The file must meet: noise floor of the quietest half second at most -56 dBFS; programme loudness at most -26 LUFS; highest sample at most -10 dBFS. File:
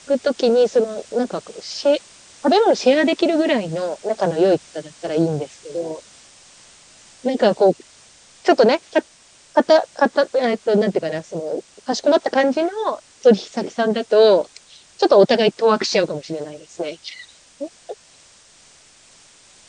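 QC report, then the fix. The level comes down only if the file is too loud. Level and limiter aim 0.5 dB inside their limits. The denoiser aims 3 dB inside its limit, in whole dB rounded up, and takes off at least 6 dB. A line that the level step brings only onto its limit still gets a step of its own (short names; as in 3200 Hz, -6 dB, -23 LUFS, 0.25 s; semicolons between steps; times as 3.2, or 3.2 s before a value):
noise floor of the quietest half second -50 dBFS: fail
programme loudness -18.5 LUFS: fail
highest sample -3.0 dBFS: fail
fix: gain -8 dB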